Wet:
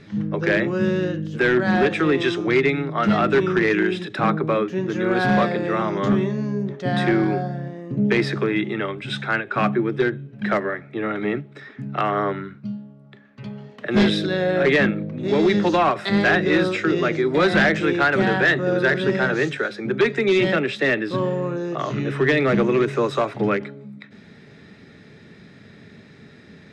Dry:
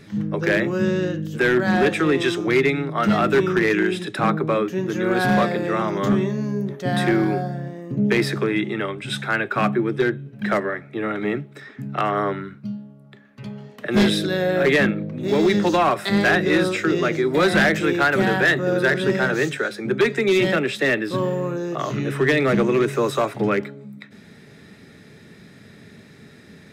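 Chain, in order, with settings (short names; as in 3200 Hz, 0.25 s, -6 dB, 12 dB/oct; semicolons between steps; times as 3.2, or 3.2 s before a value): LPF 5100 Hz 12 dB/oct; ending taper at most 230 dB/s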